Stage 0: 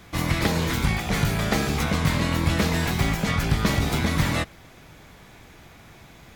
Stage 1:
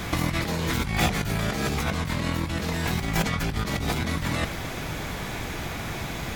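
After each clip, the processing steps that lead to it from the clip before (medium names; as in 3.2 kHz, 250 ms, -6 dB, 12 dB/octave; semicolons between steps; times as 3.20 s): compressor with a negative ratio -33 dBFS, ratio -1; trim +6.5 dB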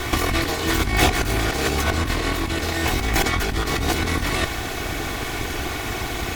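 comb filter that takes the minimum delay 2.7 ms; crackle 590 per s -41 dBFS; trim +7 dB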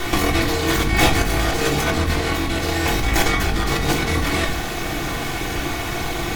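reverberation RT60 0.45 s, pre-delay 6 ms, DRR 2.5 dB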